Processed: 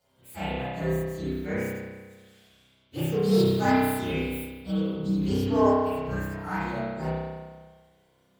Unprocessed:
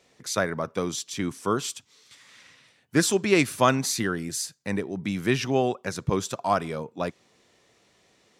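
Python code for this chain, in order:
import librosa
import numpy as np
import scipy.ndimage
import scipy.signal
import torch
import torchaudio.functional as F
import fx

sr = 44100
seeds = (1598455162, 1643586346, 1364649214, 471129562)

p1 = fx.partial_stretch(x, sr, pct=128)
p2 = fx.high_shelf(p1, sr, hz=4100.0, db=5.5, at=(3.22, 4.44))
p3 = 10.0 ** (-22.0 / 20.0) * (np.abs((p2 / 10.0 ** (-22.0 / 20.0) + 3.0) % 4.0 - 2.0) - 1.0)
p4 = p2 + (p3 * 10.0 ** (-9.5 / 20.0))
p5 = fx.hpss(p4, sr, part='percussive', gain_db=-9)
p6 = fx.echo_feedback(p5, sr, ms=165, feedback_pct=50, wet_db=-21)
p7 = fx.rev_spring(p6, sr, rt60_s=1.4, pass_ms=(31,), chirp_ms=65, drr_db=-9.0)
y = p7 * 10.0 ** (-6.5 / 20.0)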